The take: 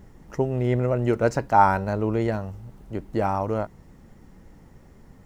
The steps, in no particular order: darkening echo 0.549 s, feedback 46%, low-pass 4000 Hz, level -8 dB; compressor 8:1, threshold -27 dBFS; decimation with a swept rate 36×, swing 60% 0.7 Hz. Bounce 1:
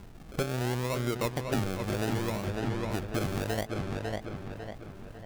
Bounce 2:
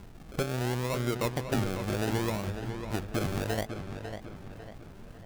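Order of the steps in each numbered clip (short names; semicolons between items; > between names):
decimation with a swept rate > darkening echo > compressor; decimation with a swept rate > compressor > darkening echo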